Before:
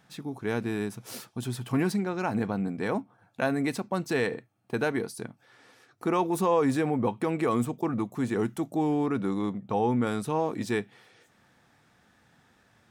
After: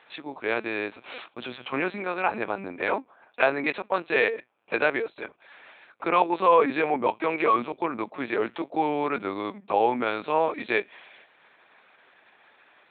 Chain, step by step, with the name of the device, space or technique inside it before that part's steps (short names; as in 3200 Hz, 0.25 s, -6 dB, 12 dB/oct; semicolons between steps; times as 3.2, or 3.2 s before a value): talking toy (LPC vocoder at 8 kHz pitch kept; HPF 500 Hz 12 dB/oct; bell 2400 Hz +7 dB 0.24 oct); gain +8 dB